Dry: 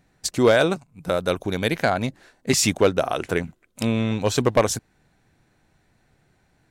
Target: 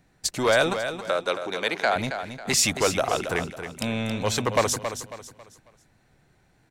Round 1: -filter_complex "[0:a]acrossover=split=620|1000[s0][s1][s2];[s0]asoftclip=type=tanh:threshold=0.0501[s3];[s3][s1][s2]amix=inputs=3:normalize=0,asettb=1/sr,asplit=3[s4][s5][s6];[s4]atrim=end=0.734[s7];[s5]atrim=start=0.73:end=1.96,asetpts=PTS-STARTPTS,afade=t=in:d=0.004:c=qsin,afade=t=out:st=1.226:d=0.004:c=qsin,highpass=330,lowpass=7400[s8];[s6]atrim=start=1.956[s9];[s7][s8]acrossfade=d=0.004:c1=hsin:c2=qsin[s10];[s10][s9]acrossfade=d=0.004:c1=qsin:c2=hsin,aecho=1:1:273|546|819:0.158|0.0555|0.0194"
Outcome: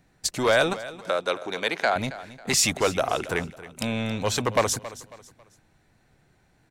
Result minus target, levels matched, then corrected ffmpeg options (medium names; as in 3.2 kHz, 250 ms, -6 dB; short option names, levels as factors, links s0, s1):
echo-to-direct -7 dB
-filter_complex "[0:a]acrossover=split=620|1000[s0][s1][s2];[s0]asoftclip=type=tanh:threshold=0.0501[s3];[s3][s1][s2]amix=inputs=3:normalize=0,asettb=1/sr,asplit=3[s4][s5][s6];[s4]atrim=end=0.734[s7];[s5]atrim=start=0.73:end=1.96,asetpts=PTS-STARTPTS,afade=t=in:d=0.004:c=qsin,afade=t=out:st=1.226:d=0.004:c=qsin,highpass=330,lowpass=7400[s8];[s6]atrim=start=1.956[s9];[s7][s8]acrossfade=d=0.004:c1=hsin:c2=qsin[s10];[s10][s9]acrossfade=d=0.004:c1=qsin:c2=hsin,aecho=1:1:273|546|819|1092:0.355|0.124|0.0435|0.0152"